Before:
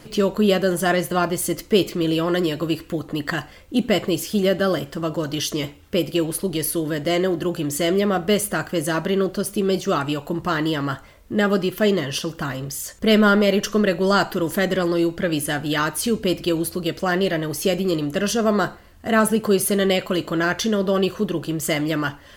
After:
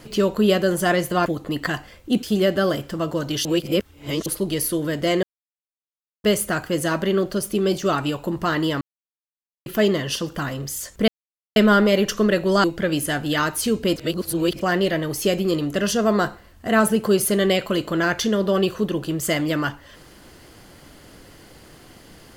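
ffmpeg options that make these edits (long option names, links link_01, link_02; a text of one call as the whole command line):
ffmpeg -i in.wav -filter_complex "[0:a]asplit=13[link_01][link_02][link_03][link_04][link_05][link_06][link_07][link_08][link_09][link_10][link_11][link_12][link_13];[link_01]atrim=end=1.262[link_14];[link_02]atrim=start=2.898:end=3.872[link_15];[link_03]atrim=start=4.258:end=5.482[link_16];[link_04]atrim=start=5.478:end=6.292,asetpts=PTS-STARTPTS,areverse[link_17];[link_05]atrim=start=6.288:end=7.26,asetpts=PTS-STARTPTS,afade=type=out:start_time=0.968:duration=0.004:curve=hsin[link_18];[link_06]atrim=start=7.26:end=8.27,asetpts=PTS-STARTPTS,volume=0[link_19];[link_07]atrim=start=8.27:end=10.84,asetpts=PTS-STARTPTS,afade=type=in:duration=0.004:curve=hsin,afade=type=out:start_time=2.566:duration=0.004:curve=hsin[link_20];[link_08]atrim=start=10.84:end=11.69,asetpts=PTS-STARTPTS,volume=0[link_21];[link_09]atrim=start=11.69:end=13.11,asetpts=PTS-STARTPTS,afade=type=in:duration=0.004:curve=hsin,afade=type=out:start_time=1.416:duration=0.004:curve=hsin,apad=pad_dur=0.48[link_22];[link_10]atrim=start=13.11:end=14.192,asetpts=PTS-STARTPTS,afade=type=in:duration=0.004:curve=hsin[link_23];[link_11]atrim=start=15.038:end=16.362[link_24];[link_12]atrim=start=16.358:end=17.012,asetpts=PTS-STARTPTS,areverse[link_25];[link_13]atrim=start=17.008[link_26];[link_14][link_15]acrossfade=duration=0.004:curve1=hsin:curve2=hsin[link_27];[link_27][link_16]acrossfade=duration=0.004:curve1=hsin:curve2=hsin[link_28];[link_28][link_17]acrossfade=duration=0.004:curve1=hsin:curve2=hsin[link_29];[link_18][link_19][link_20][link_21][link_22][link_23]concat=n=6:v=0:a=1[link_30];[link_29][link_30]acrossfade=duration=0.004:curve1=hsin:curve2=hsin[link_31];[link_31][link_24]acrossfade=duration=0.004:curve1=hsin:curve2=hsin[link_32];[link_32][link_25]acrossfade=duration=0.004:curve1=hsin:curve2=hsin[link_33];[link_33][link_26]acrossfade=duration=0.004:curve1=hsin:curve2=hsin" out.wav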